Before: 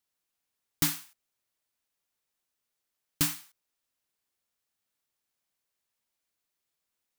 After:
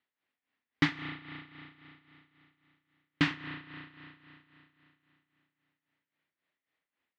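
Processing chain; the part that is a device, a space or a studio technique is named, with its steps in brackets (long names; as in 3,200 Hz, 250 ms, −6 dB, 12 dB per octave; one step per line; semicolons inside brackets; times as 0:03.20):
combo amplifier with spring reverb and tremolo (spring reverb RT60 3.2 s, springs 33 ms, chirp 30 ms, DRR 4 dB; amplitude tremolo 3.7 Hz, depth 74%; loudspeaker in its box 95–3,400 Hz, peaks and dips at 130 Hz −3 dB, 260 Hz +5 dB, 1,900 Hz +8 dB)
level +4 dB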